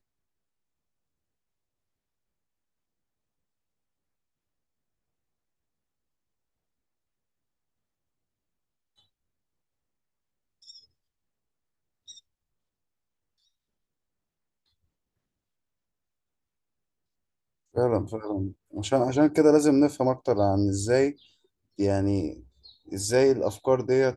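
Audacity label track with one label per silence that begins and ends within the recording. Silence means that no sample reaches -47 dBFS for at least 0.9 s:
10.790000	12.080000	silence
12.190000	17.750000	silence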